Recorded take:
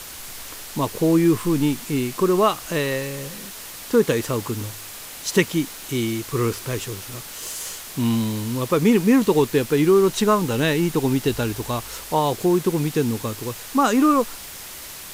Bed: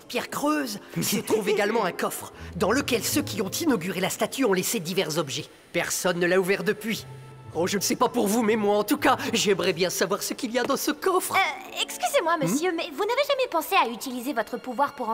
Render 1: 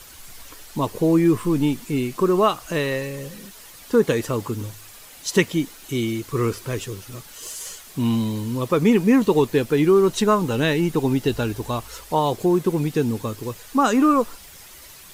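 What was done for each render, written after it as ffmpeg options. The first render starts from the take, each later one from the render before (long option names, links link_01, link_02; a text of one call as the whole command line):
ffmpeg -i in.wav -af "afftdn=noise_reduction=9:noise_floor=-37" out.wav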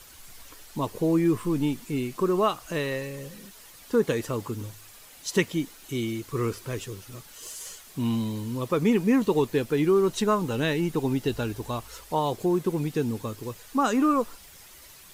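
ffmpeg -i in.wav -af "volume=-5.5dB" out.wav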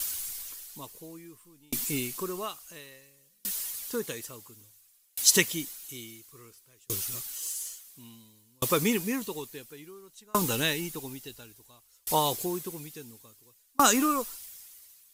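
ffmpeg -i in.wav -af "crystalizer=i=7:c=0,aeval=exprs='val(0)*pow(10,-37*if(lt(mod(0.58*n/s,1),2*abs(0.58)/1000),1-mod(0.58*n/s,1)/(2*abs(0.58)/1000),(mod(0.58*n/s,1)-2*abs(0.58)/1000)/(1-2*abs(0.58)/1000))/20)':channel_layout=same" out.wav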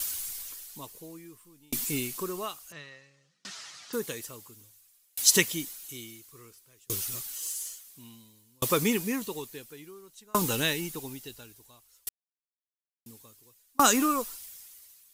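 ffmpeg -i in.wav -filter_complex "[0:a]asettb=1/sr,asplit=3[link_01][link_02][link_03];[link_01]atrim=end=2.724[link_04];[link_02]atrim=start=2.72:end=3.93,asetpts=PTS-STARTPTS,afade=type=in:duration=0.004:curve=qsin,afade=type=out:start_time=1.206:duration=0.004:curve=qsin,highpass=130,equalizer=frequency=150:width_type=q:width=4:gain=9,equalizer=frequency=220:width_type=q:width=4:gain=-8,equalizer=frequency=450:width_type=q:width=4:gain=-5,equalizer=frequency=730:width_type=q:width=4:gain=6,equalizer=frequency=1300:width_type=q:width=4:gain=9,equalizer=frequency=1900:width_type=q:width=4:gain=4,lowpass=frequency=5900:width=0.5412,lowpass=frequency=5900:width=1.3066[link_05];[link_03]atrim=start=3.926[link_06];[link_04][link_05]acrossfade=duration=0.004:curve1=hsin:curve2=qsin[link_07];[link_07][link_06]acrossfade=duration=0.004:curve1=qsin:curve2=hsin,asplit=3[link_08][link_09][link_10];[link_08]atrim=end=12.09,asetpts=PTS-STARTPTS,afade=type=out:start_time=12.086:duration=0.004:curve=hsin[link_11];[link_09]atrim=start=12.09:end=13.06,asetpts=PTS-STARTPTS,volume=0[link_12];[link_10]atrim=start=13.06,asetpts=PTS-STARTPTS,afade=type=in:duration=0.004:curve=hsin[link_13];[link_11][link_12][link_13]concat=n=3:v=0:a=1" out.wav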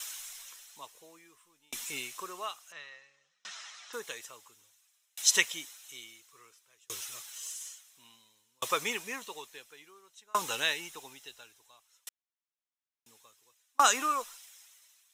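ffmpeg -i in.wav -filter_complex "[0:a]acrossover=split=570 7600:gain=0.0891 1 0.178[link_01][link_02][link_03];[link_01][link_02][link_03]amix=inputs=3:normalize=0,bandreject=frequency=4600:width=5.4" out.wav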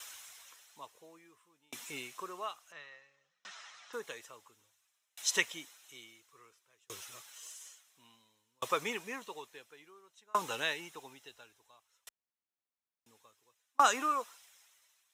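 ffmpeg -i in.wav -af "highpass=51,highshelf=frequency=2500:gain=-9.5" out.wav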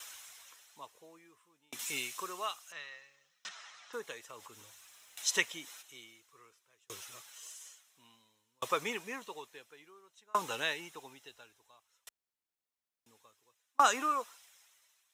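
ffmpeg -i in.wav -filter_complex "[0:a]asettb=1/sr,asplit=3[link_01][link_02][link_03];[link_01]atrim=end=1.794[link_04];[link_02]atrim=start=1.79:end=3.49,asetpts=PTS-STARTPTS,afade=type=in:duration=0.004:curve=qsin,afade=type=out:start_time=1.696:duration=0.004:curve=qsin,highshelf=frequency=2100:gain=10[link_05];[link_03]atrim=start=3.486[link_06];[link_04][link_05]acrossfade=duration=0.004:curve1=hsin:curve2=qsin[link_07];[link_07][link_06]acrossfade=duration=0.004:curve1=qsin:curve2=hsin,asplit=3[link_08][link_09][link_10];[link_08]afade=type=out:start_time=4.29:duration=0.02[link_11];[link_09]acompressor=mode=upward:threshold=-40dB:ratio=2.5:attack=3.2:release=140:knee=2.83:detection=peak,afade=type=in:start_time=4.29:duration=0.02,afade=type=out:start_time=5.81:duration=0.02[link_12];[link_10]afade=type=in:start_time=5.81:duration=0.02[link_13];[link_11][link_12][link_13]amix=inputs=3:normalize=0" out.wav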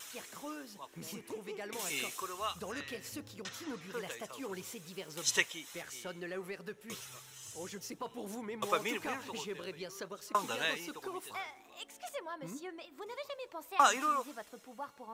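ffmpeg -i in.wav -i bed.wav -filter_complex "[1:a]volume=-20dB[link_01];[0:a][link_01]amix=inputs=2:normalize=0" out.wav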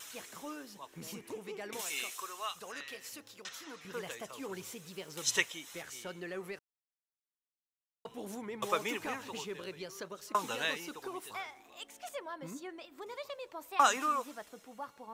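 ffmpeg -i in.wav -filter_complex "[0:a]asettb=1/sr,asplit=3[link_01][link_02][link_03];[link_01]atrim=end=1.814[link_04];[link_02]atrim=start=1.81:end=3.85,asetpts=PTS-STARTPTS,afade=type=in:duration=0.004:curve=qsin,afade=type=out:start_time=2.036:duration=0.004:curve=qsin,highpass=frequency=760:poles=1[link_05];[link_03]atrim=start=3.846[link_06];[link_04][link_05]acrossfade=duration=0.004:curve1=hsin:curve2=qsin[link_07];[link_07][link_06]acrossfade=duration=0.004:curve1=qsin:curve2=hsin,asplit=3[link_08][link_09][link_10];[link_08]atrim=end=6.59,asetpts=PTS-STARTPTS,afade=type=out:start_time=6.586:duration=0.004:curve=hsin[link_11];[link_09]atrim=start=6.59:end=8.05,asetpts=PTS-STARTPTS,volume=0[link_12];[link_10]atrim=start=8.05,asetpts=PTS-STARTPTS,afade=type=in:duration=0.004:curve=hsin[link_13];[link_11][link_12][link_13]concat=n=3:v=0:a=1" out.wav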